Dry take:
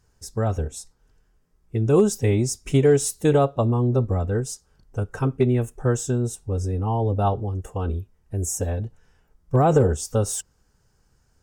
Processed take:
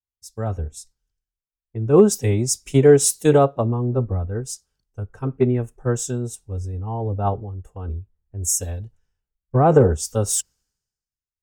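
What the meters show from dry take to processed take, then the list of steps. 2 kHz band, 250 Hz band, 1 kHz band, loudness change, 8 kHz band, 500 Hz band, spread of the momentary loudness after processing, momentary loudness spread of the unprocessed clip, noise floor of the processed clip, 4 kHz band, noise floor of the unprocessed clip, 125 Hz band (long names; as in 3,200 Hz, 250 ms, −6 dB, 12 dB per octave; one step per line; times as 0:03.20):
+1.0 dB, +1.5 dB, +1.5 dB, +3.0 dB, +6.0 dB, +3.0 dB, 19 LU, 13 LU, below −85 dBFS, +4.0 dB, −65 dBFS, 0.0 dB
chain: multiband upward and downward expander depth 100%
level −1 dB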